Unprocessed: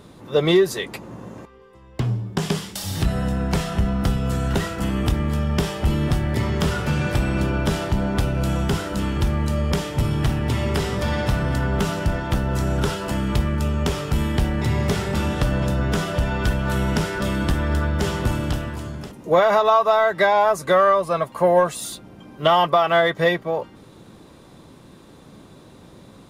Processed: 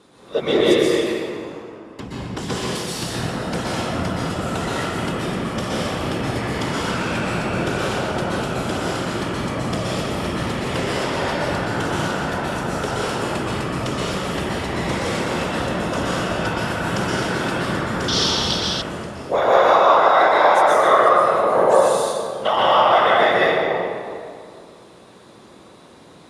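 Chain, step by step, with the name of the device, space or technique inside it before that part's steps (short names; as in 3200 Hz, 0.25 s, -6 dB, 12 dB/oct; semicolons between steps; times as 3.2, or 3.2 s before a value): whispering ghost (whisperiser; HPF 390 Hz 6 dB/oct; reverb RT60 2.2 s, pre-delay 0.115 s, DRR -7 dB); 18.08–18.82 band shelf 4400 Hz +16 dB 1.1 oct; LPF 11000 Hz 24 dB/oct; gain -3 dB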